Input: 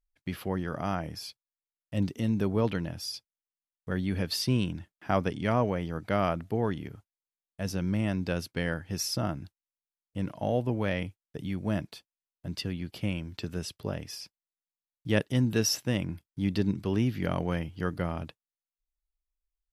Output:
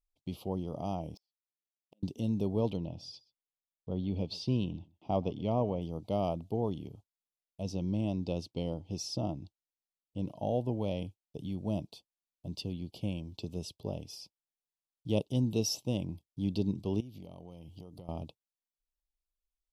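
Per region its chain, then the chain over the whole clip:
0:01.14–0:02.03: running median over 5 samples + linear-phase brick-wall high-pass 170 Hz + gate with flip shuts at −39 dBFS, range −40 dB
0:02.77–0:05.82: low-pass filter 4,000 Hz + single-tap delay 127 ms −22.5 dB
0:07.62–0:10.26: low-pass filter 7,000 Hz + parametric band 310 Hz +3.5 dB 0.23 octaves
0:17.00–0:18.09: high-shelf EQ 7,200 Hz +9 dB + downward compressor 10 to 1, threshold −39 dBFS
whole clip: Chebyshev band-stop filter 820–3,300 Hz, order 2; high-shelf EQ 6,600 Hz −6 dB; level −3 dB

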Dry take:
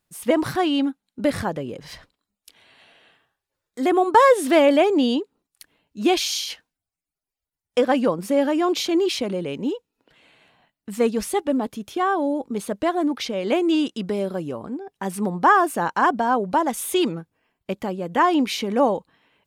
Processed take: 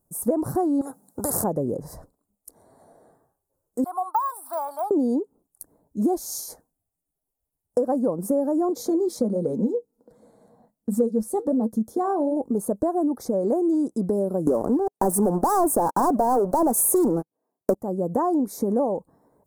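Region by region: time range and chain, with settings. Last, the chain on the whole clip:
0:00.81–0:01.44: high-pass filter 120 Hz + every bin compressed towards the loudest bin 4 to 1
0:03.84–0:04.91: de-essing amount 65% + high-pass filter 830 Hz 24 dB per octave + phaser with its sweep stopped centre 1,900 Hz, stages 6
0:08.69–0:12.37: parametric band 3,400 Hz +10.5 dB 1.6 octaves + flanger 1.3 Hz, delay 0.4 ms, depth 8 ms, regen −66% + hollow resonant body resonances 220/480 Hz, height 13 dB, ringing for 85 ms
0:14.47–0:17.75: high-pass filter 260 Hz + leveller curve on the samples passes 5
whole clip: Chebyshev band-stop filter 670–9,800 Hz, order 2; downward compressor 5 to 1, threshold −28 dBFS; level +7.5 dB

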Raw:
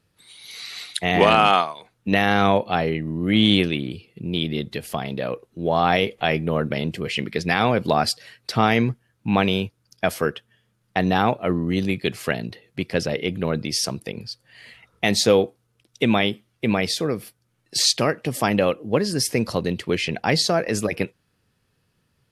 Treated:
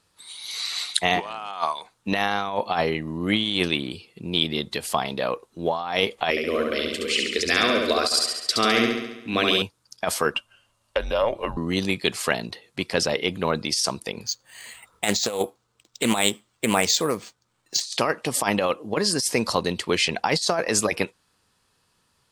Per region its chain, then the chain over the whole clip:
0:06.30–0:09.62: phaser with its sweep stopped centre 360 Hz, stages 4 + repeating echo 69 ms, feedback 60%, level −3.5 dB
0:10.34–0:11.57: frequency shifter −230 Hz + downward compressor 5 to 1, threshold −26 dBFS + hollow resonant body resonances 570/2,800 Hz, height 15 dB, ringing for 40 ms
0:14.26–0:17.81: low-pass filter 5,700 Hz 24 dB per octave + bad sample-rate conversion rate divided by 4×, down none, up hold + highs frequency-modulated by the lows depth 0.2 ms
whole clip: graphic EQ with 10 bands 125 Hz −6 dB, 1,000 Hz +10 dB, 4,000 Hz +6 dB, 8,000 Hz +11 dB; compressor whose output falls as the input rises −17 dBFS, ratio −0.5; level −4 dB

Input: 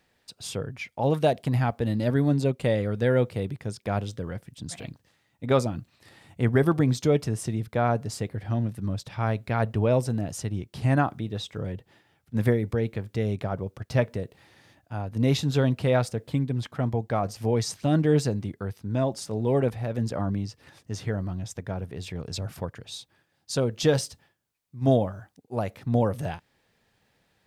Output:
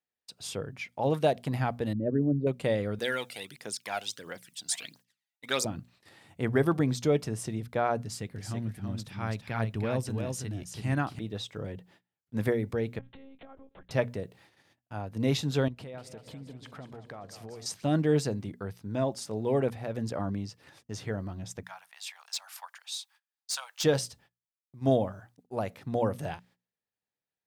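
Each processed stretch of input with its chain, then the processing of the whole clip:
0:01.93–0:02.47: spectral envelope exaggerated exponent 2 + low-pass filter 2,200 Hz 24 dB per octave
0:02.99–0:05.65: phase shifter 1.5 Hz, delay 1.5 ms, feedback 59% + high-pass filter 250 Hz + tilt shelving filter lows −9.5 dB, about 1,300 Hz
0:08.02–0:11.19: parametric band 610 Hz −7.5 dB 1.8 octaves + single-tap delay 330 ms −5 dB
0:12.99–0:13.91: downward compressor 16 to 1, threshold −38 dBFS + one-pitch LPC vocoder at 8 kHz 270 Hz
0:15.68–0:17.66: downward compressor, threshold −37 dBFS + high-shelf EQ 9,500 Hz −4 dB + echo with a time of its own for lows and highs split 460 Hz, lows 130 ms, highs 195 ms, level −10 dB
0:21.63–0:23.84: Butterworth high-pass 800 Hz 48 dB per octave + high-shelf EQ 3,400 Hz +7 dB + hard clipping −24.5 dBFS
whole clip: noise gate −55 dBFS, range −25 dB; low-shelf EQ 100 Hz −8.5 dB; mains-hum notches 60/120/180/240 Hz; level −2.5 dB

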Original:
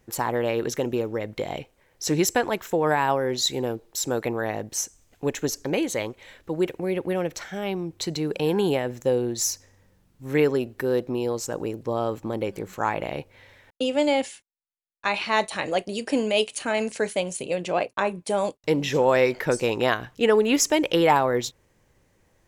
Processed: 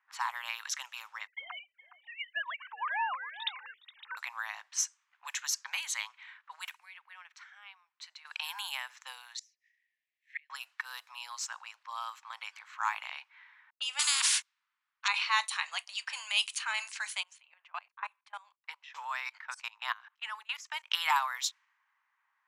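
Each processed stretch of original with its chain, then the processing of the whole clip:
0:01.27–0:04.17: three sine waves on the formant tracks + single-tap delay 415 ms −15 dB
0:06.76–0:08.25: de-essing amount 35% + first-order pre-emphasis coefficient 0.8
0:09.36–0:10.50: Butterworth high-pass 1,800 Hz 96 dB per octave + high-shelf EQ 7,700 Hz −5.5 dB + gate with flip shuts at −23 dBFS, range −28 dB
0:13.99–0:15.08: low-shelf EQ 220 Hz −6.5 dB + every bin compressed towards the loudest bin 10 to 1
0:17.23–0:20.91: high-shelf EQ 2,800 Hz −9 dB + output level in coarse steps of 23 dB
whole clip: low-pass that shuts in the quiet parts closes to 1,400 Hz, open at −20.5 dBFS; dynamic equaliser 1,700 Hz, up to −4 dB, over −36 dBFS, Q 1.2; Butterworth high-pass 990 Hz 48 dB per octave

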